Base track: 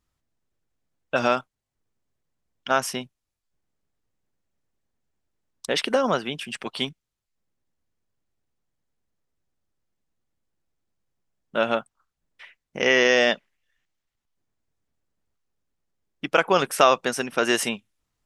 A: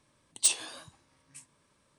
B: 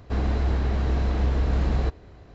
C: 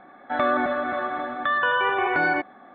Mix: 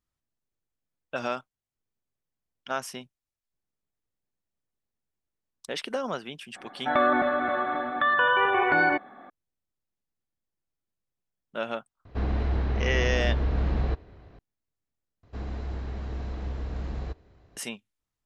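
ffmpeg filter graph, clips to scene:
ffmpeg -i bed.wav -i cue0.wav -i cue1.wav -i cue2.wav -filter_complex "[2:a]asplit=2[link_01][link_02];[0:a]volume=-9dB[link_03];[link_01]lowpass=4100[link_04];[link_03]asplit=2[link_05][link_06];[link_05]atrim=end=15.234[link_07];[link_02]atrim=end=2.34,asetpts=PTS-STARTPTS,volume=-10.5dB[link_08];[link_06]atrim=start=17.566[link_09];[3:a]atrim=end=2.74,asetpts=PTS-STARTPTS,afade=type=in:duration=0.004:curve=hsin,afade=type=out:start_time=2.736:duration=0.004:curve=hsin,adelay=6560[link_10];[link_04]atrim=end=2.34,asetpts=PTS-STARTPTS,volume=-3dB,afade=type=in:duration=0.004:curve=hsin,afade=type=out:start_time=2.336:duration=0.004:curve=hsin,adelay=12050[link_11];[link_07][link_08]acrossfade=duration=0.004:curve1=hsin:curve2=hsin[link_12];[link_12][link_09]acrossfade=duration=0.004:curve1=hsin:curve2=hsin[link_13];[link_13][link_10][link_11]amix=inputs=3:normalize=0" out.wav

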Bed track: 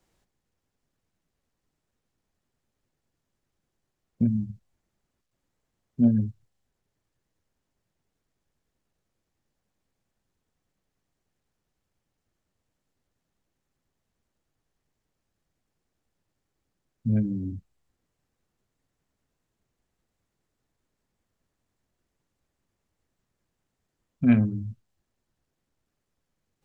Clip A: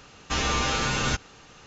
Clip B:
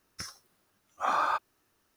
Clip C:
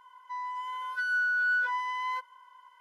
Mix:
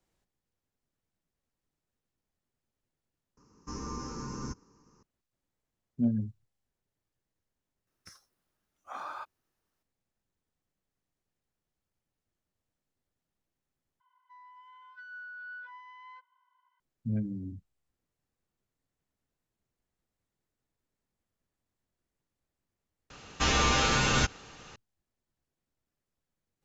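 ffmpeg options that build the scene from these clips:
ffmpeg -i bed.wav -i cue0.wav -i cue1.wav -i cue2.wav -filter_complex "[1:a]asplit=2[link_01][link_02];[0:a]volume=-7.5dB[link_03];[link_01]firequalizer=gain_entry='entry(110,0);entry(190,6);entry(290,6);entry(430,2);entry(690,-18);entry(1000,5);entry(1400,-10);entry(3500,-29);entry(5400,2);entry(11000,-26)':delay=0.05:min_phase=1[link_04];[3:a]highpass=690,lowpass=3900[link_05];[link_03]asplit=4[link_06][link_07][link_08][link_09];[link_06]atrim=end=3.374[link_10];[link_04]atrim=end=1.66,asetpts=PTS-STARTPTS,volume=-12.5dB[link_11];[link_07]atrim=start=5.026:end=14.004[link_12];[link_05]atrim=end=2.8,asetpts=PTS-STARTPTS,volume=-17dB[link_13];[link_08]atrim=start=16.796:end=23.104[link_14];[link_02]atrim=end=1.66[link_15];[link_09]atrim=start=24.756[link_16];[2:a]atrim=end=1.96,asetpts=PTS-STARTPTS,volume=-13dB,afade=type=in:duration=0.004:curve=hsin,afade=type=out:start_time=1.956:duration=0.004:curve=hsin,adelay=7870[link_17];[link_10][link_11]acrossfade=duration=0.004:curve1=hsin:curve2=hsin[link_18];[link_18][link_12]acrossfade=duration=0.004:curve1=hsin:curve2=hsin[link_19];[link_19][link_13]acrossfade=duration=0.004:curve1=hsin:curve2=hsin[link_20];[link_20][link_14]acrossfade=duration=0.004:curve1=hsin:curve2=hsin[link_21];[link_21][link_15]acrossfade=duration=0.004:curve1=hsin:curve2=hsin[link_22];[link_22][link_16]acrossfade=duration=0.004:curve1=hsin:curve2=hsin[link_23];[link_23][link_17]amix=inputs=2:normalize=0" out.wav

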